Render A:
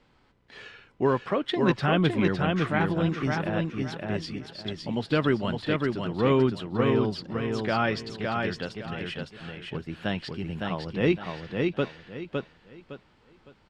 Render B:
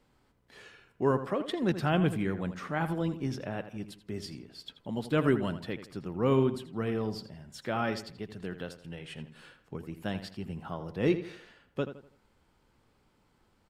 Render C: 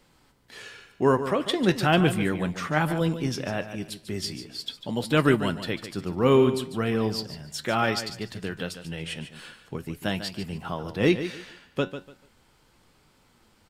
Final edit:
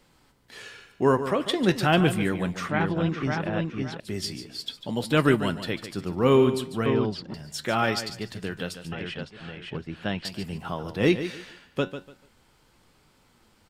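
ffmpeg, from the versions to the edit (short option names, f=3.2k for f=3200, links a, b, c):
-filter_complex "[0:a]asplit=3[a][b][c];[2:a]asplit=4[d][e][f][g];[d]atrim=end=2.692[h];[a]atrim=start=2.688:end=4.002[i];[e]atrim=start=3.998:end=6.862[j];[b]atrim=start=6.858:end=7.342[k];[f]atrim=start=7.338:end=8.922[l];[c]atrim=start=8.918:end=10.252[m];[g]atrim=start=10.248[n];[h][i]acrossfade=d=0.004:c1=hsin:c2=hsin[o];[o][j]acrossfade=d=0.004:c1=hsin:c2=hsin[p];[p][k]acrossfade=d=0.004:c1=hsin:c2=hsin[q];[q][l]acrossfade=d=0.004:c1=hsin:c2=hsin[r];[r][m]acrossfade=d=0.004:c1=hsin:c2=hsin[s];[s][n]acrossfade=d=0.004:c1=hsin:c2=hsin"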